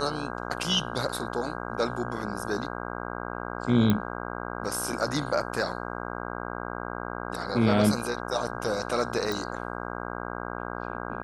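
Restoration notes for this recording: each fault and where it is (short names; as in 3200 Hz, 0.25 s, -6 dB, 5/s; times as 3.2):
buzz 60 Hz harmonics 27 -35 dBFS
3.9 pop -11 dBFS
9.32 pop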